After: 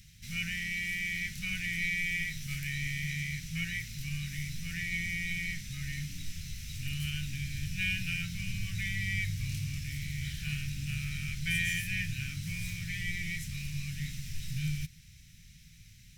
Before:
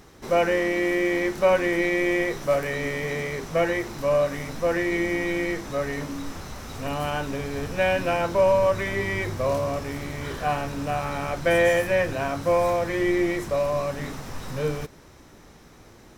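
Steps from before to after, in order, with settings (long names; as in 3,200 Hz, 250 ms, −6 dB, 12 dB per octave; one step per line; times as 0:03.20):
elliptic band-stop filter 160–2,300 Hz, stop band 50 dB
level −1 dB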